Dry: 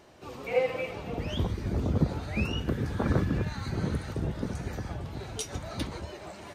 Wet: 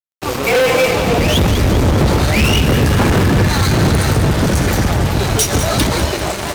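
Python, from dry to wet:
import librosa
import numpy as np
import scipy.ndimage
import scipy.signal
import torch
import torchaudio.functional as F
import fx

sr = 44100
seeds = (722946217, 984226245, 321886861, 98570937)

y = fx.high_shelf(x, sr, hz=9000.0, db=11.5)
y = fx.fuzz(y, sr, gain_db=38.0, gate_db=-45.0)
y = fx.echo_feedback(y, sr, ms=197, feedback_pct=58, wet_db=-10)
y = y * librosa.db_to_amplitude(2.5)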